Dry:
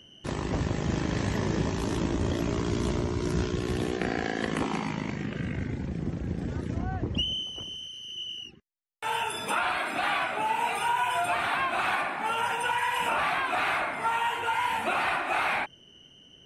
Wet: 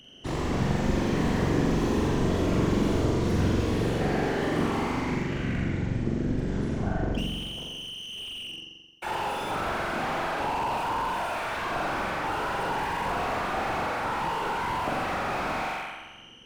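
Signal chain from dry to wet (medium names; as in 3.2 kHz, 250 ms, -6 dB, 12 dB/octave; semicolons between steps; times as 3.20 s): 10.98–11.65 s: high-pass 1.4 kHz 6 dB/octave; whisper effect; on a send: flutter echo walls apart 7.5 m, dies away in 1.2 s; on the sum: slew-rate limiter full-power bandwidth 45 Hz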